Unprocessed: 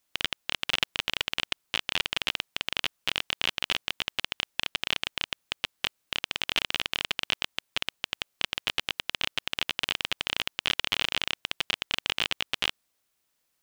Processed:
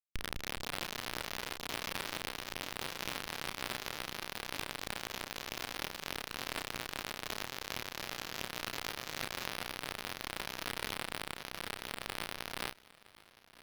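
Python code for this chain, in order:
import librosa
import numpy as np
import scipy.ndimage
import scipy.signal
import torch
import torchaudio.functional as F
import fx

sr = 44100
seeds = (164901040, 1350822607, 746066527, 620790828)

y = fx.recorder_agc(x, sr, target_db=-10.5, rise_db_per_s=36.0, max_gain_db=30)
y = fx.lowpass(y, sr, hz=3300.0, slope=6)
y = fx.low_shelf(y, sr, hz=490.0, db=9.0)
y = fx.schmitt(y, sr, flips_db=-21.0)
y = fx.echo_pitch(y, sr, ms=230, semitones=3, count=2, db_per_echo=-3.0)
y = fx.doubler(y, sr, ms=32.0, db=-9)
y = fx.echo_feedback(y, sr, ms=965, feedback_pct=56, wet_db=-20.5)
y = fx.pre_swell(y, sr, db_per_s=40.0)
y = F.gain(torch.from_numpy(y), 5.0).numpy()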